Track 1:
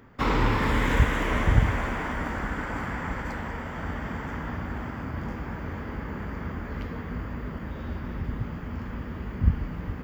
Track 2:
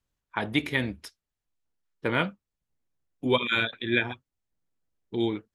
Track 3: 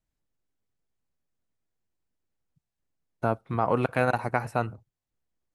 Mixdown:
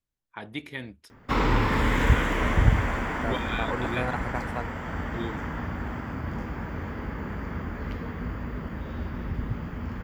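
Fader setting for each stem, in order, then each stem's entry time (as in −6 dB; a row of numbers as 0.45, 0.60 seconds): +0.5, −9.5, −7.5 decibels; 1.10, 0.00, 0.00 seconds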